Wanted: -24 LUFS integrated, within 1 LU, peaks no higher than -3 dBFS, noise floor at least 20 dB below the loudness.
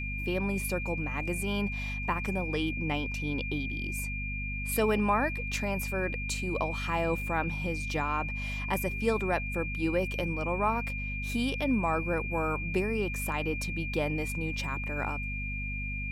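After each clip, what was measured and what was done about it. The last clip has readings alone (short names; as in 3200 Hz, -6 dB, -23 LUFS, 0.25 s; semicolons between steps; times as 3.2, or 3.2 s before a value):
hum 50 Hz; harmonics up to 250 Hz; hum level -34 dBFS; steady tone 2400 Hz; tone level -36 dBFS; loudness -31.0 LUFS; peak -15.0 dBFS; loudness target -24.0 LUFS
-> notches 50/100/150/200/250 Hz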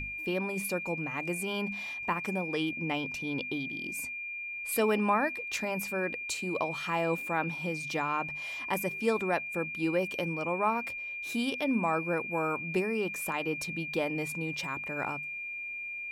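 hum none; steady tone 2400 Hz; tone level -36 dBFS
-> notch 2400 Hz, Q 30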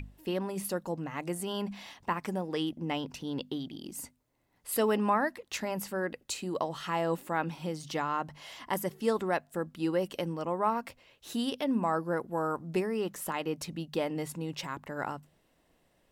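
steady tone none; loudness -33.5 LUFS; peak -15.5 dBFS; loudness target -24.0 LUFS
-> gain +9.5 dB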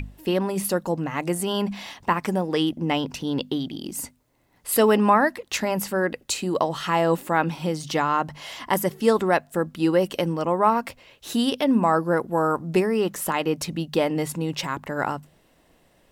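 loudness -24.0 LUFS; peak -6.0 dBFS; noise floor -61 dBFS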